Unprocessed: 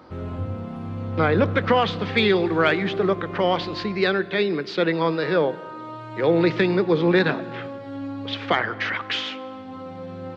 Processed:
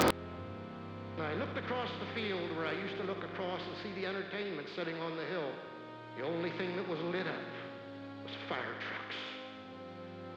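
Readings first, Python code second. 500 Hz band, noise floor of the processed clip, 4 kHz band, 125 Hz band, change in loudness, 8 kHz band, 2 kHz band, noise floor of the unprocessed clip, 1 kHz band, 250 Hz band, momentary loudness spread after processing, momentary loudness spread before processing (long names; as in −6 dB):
−16.5 dB, −48 dBFS, −14.0 dB, −17.0 dB, −17.0 dB, can't be measured, −14.5 dB, −37 dBFS, −14.5 dB, −16.0 dB, 10 LU, 15 LU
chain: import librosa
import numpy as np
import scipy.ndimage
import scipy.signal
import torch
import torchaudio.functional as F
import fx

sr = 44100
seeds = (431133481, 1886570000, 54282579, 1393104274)

p1 = fx.bin_compress(x, sr, power=0.6)
p2 = p1 + fx.echo_thinned(p1, sr, ms=72, feedback_pct=70, hz=770.0, wet_db=-7, dry=0)
p3 = fx.gate_flip(p2, sr, shuts_db=-23.0, range_db=-27)
p4 = (np.mod(10.0 ** (24.0 / 20.0) * p3 + 1.0, 2.0) - 1.0) / 10.0 ** (24.0 / 20.0)
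y = p4 * librosa.db_to_amplitude(6.0)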